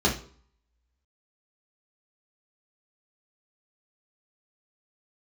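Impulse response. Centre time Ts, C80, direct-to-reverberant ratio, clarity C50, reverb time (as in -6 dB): 21 ms, 15.5 dB, -4.5 dB, 9.5 dB, no single decay rate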